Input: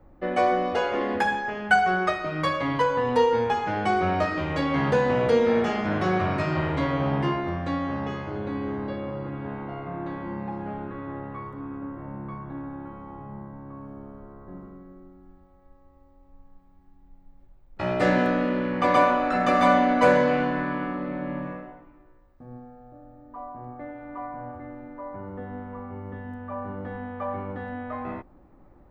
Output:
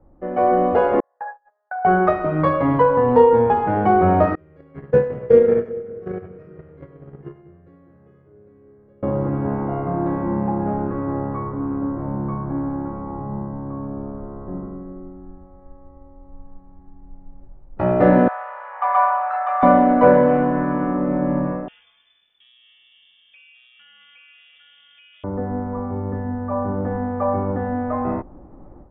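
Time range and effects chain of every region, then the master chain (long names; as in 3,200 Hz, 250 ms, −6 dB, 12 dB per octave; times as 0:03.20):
0:01.00–0:01.85: elliptic band-pass filter 570–1,800 Hz, stop band 50 dB + noise gate −26 dBFS, range −44 dB + downward compressor 2 to 1, threshold −45 dBFS
0:04.35–0:09.03: noise gate −21 dBFS, range −30 dB + drawn EQ curve 170 Hz 0 dB, 270 Hz −7 dB, 420 Hz +5 dB, 610 Hz −5 dB, 920 Hz −14 dB, 1,300 Hz −3 dB, 2,000 Hz +1 dB, 4,200 Hz −3 dB, 6,400 Hz +10 dB, 10,000 Hz −6 dB + echo with a time of its own for lows and highs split 470 Hz, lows 200 ms, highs 94 ms, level −13.5 dB
0:18.28–0:19.63: Butterworth high-pass 740 Hz 48 dB per octave + high-shelf EQ 2,300 Hz −10 dB
0:21.68–0:25.24: voice inversion scrambler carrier 3,500 Hz + downward compressor, threshold −41 dBFS
whole clip: low-pass filter 1,000 Hz 12 dB per octave; automatic gain control gain up to 11.5 dB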